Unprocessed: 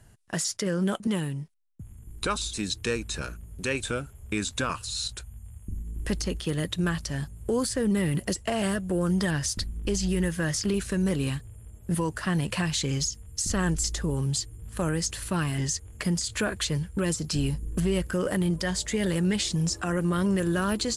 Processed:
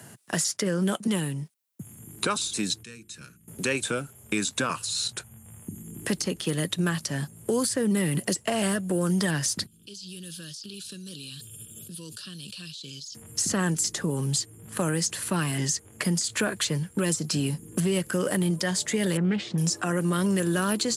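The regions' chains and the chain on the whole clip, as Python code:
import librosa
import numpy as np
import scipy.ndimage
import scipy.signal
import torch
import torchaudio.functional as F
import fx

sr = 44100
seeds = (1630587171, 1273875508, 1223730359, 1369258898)

y = fx.chain(x, sr, fx.tone_stack(knobs='6-0-2'),
    fx.hum_notches(base_hz=50, count=9), at=(2.83, 3.48))
y = fx.chain(y, sr, fx.cheby2_highpass(hz=2200.0, order=4, stop_db=40),
    fx.air_absorb(metres=480.0),
    fx.env_flatten(amount_pct=100), at=(9.66, 13.15))
y = fx.chain(y, sr, fx.lowpass(hz=1900.0, slope=12),
    fx.doppler_dist(depth_ms=0.19), at=(19.17, 19.58))
y = scipy.signal.sosfilt(scipy.signal.butter(4, 130.0, 'highpass', fs=sr, output='sos'), y)
y = fx.high_shelf(y, sr, hz=9000.0, db=8.5)
y = fx.band_squash(y, sr, depth_pct=40)
y = F.gain(torch.from_numpy(y), 1.0).numpy()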